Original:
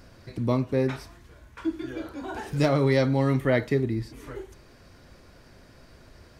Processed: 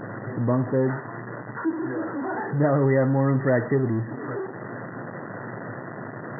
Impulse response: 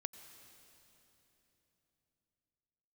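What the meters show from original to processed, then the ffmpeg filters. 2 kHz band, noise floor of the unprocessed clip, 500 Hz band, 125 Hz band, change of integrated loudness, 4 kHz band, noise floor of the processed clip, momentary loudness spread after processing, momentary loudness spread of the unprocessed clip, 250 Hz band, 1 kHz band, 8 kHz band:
+2.5 dB, -53 dBFS, +2.0 dB, +2.5 dB, 0.0 dB, under -40 dB, -37 dBFS, 15 LU, 17 LU, +2.5 dB, +4.5 dB, under -30 dB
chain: -af "aeval=exprs='val(0)+0.5*0.0473*sgn(val(0))':c=same,afftfilt=real='re*between(b*sr/4096,100,2000)':imag='im*between(b*sr/4096,100,2000)':win_size=4096:overlap=0.75"

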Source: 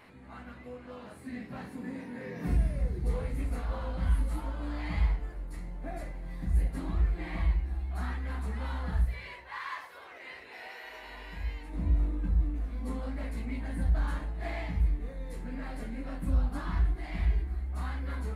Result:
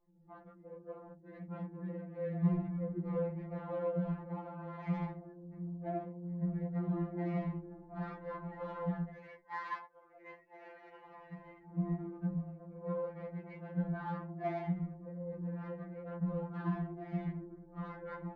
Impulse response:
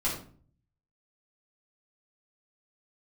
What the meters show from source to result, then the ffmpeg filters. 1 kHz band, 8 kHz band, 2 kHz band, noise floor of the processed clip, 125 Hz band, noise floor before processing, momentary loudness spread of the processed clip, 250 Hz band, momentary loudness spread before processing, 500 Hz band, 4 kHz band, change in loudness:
-1.5 dB, no reading, -9.0 dB, -60 dBFS, -6.0 dB, -49 dBFS, 17 LU, +1.5 dB, 14 LU, +3.5 dB, under -15 dB, -5.5 dB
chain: -af "anlmdn=0.0631,adynamicsmooth=sensitivity=1.5:basefreq=930,lowshelf=f=62:g=-9.5,afftfilt=real='re*2.83*eq(mod(b,8),0)':imag='im*2.83*eq(mod(b,8),0)':win_size=2048:overlap=0.75,volume=1.68"

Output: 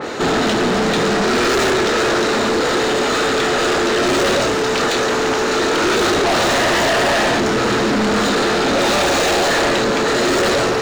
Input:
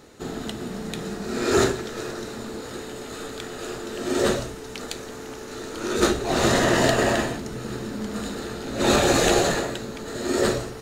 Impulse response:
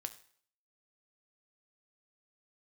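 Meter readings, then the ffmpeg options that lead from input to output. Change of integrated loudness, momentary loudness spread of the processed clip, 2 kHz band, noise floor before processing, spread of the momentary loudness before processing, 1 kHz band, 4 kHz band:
+9.0 dB, 2 LU, +11.5 dB, -37 dBFS, 16 LU, +11.5 dB, +11.0 dB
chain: -filter_complex "[0:a]asplit=2[s0][s1];[1:a]atrim=start_sample=2205,adelay=29[s2];[s1][s2]afir=irnorm=-1:irlink=0,volume=0.282[s3];[s0][s3]amix=inputs=2:normalize=0,asplit=2[s4][s5];[s5]highpass=f=720:p=1,volume=63.1,asoftclip=type=tanh:threshold=0.596[s6];[s4][s6]amix=inputs=2:normalize=0,lowpass=f=1700:p=1,volume=0.501,equalizer=f=11000:w=1.4:g=-10.5,aeval=exprs='0.562*(cos(1*acos(clip(val(0)/0.562,-1,1)))-cos(1*PI/2))+0.112*(cos(5*acos(clip(val(0)/0.562,-1,1)))-cos(5*PI/2))':c=same,adynamicequalizer=threshold=0.0355:dfrequency=3500:dqfactor=0.7:tfrequency=3500:tqfactor=0.7:attack=5:release=100:ratio=0.375:range=2:mode=boostabove:tftype=highshelf,volume=0.596"

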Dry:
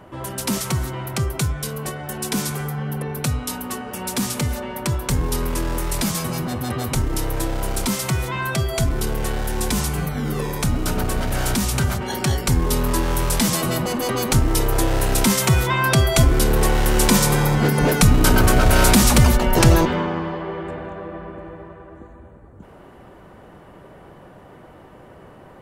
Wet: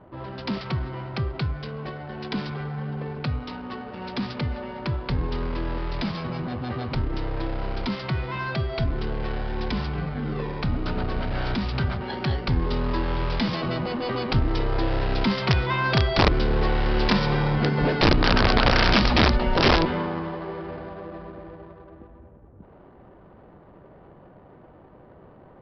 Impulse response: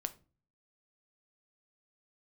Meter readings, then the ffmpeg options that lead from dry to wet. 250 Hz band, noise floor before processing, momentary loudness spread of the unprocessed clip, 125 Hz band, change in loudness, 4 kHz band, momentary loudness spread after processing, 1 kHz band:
-4.5 dB, -45 dBFS, 12 LU, -5.5 dB, -5.0 dB, -2.5 dB, 14 LU, -3.0 dB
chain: -af "adynamicsmooth=sensitivity=6.5:basefreq=1000,aresample=11025,aeval=exprs='(mod(2.24*val(0)+1,2)-1)/2.24':c=same,aresample=44100,volume=0.596"

